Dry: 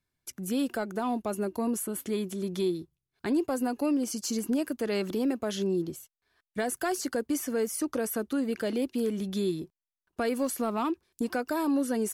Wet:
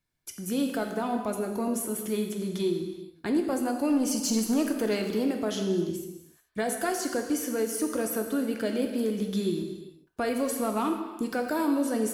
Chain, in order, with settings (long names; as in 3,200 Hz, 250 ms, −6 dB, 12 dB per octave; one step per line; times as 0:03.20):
0:03.90–0:04.95: leveller curve on the samples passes 1
reverb whose tail is shaped and stops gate 460 ms falling, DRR 3.5 dB